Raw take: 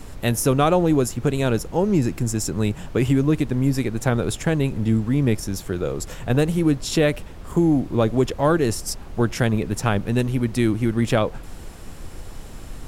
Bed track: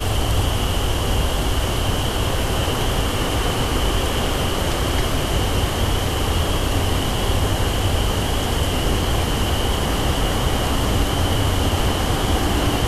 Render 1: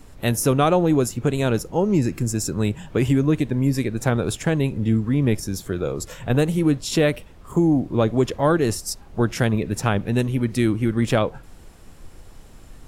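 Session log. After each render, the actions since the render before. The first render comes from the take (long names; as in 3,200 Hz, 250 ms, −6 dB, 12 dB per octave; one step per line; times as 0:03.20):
noise reduction from a noise print 8 dB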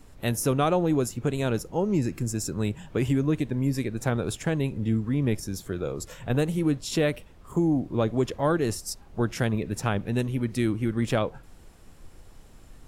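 level −5.5 dB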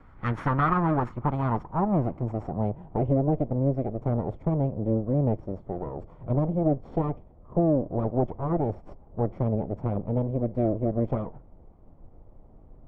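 lower of the sound and its delayed copy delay 0.9 ms
low-pass filter sweep 1,500 Hz → 590 Hz, 0:00.47–0:03.18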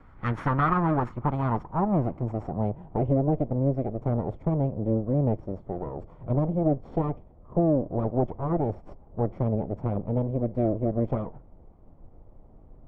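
no processing that can be heard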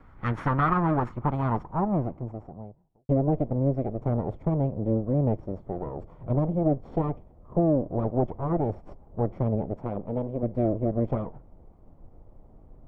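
0:01.53–0:03.09: fade out and dull
0:09.73–0:10.43: parametric band 69 Hz −9.5 dB 2.5 octaves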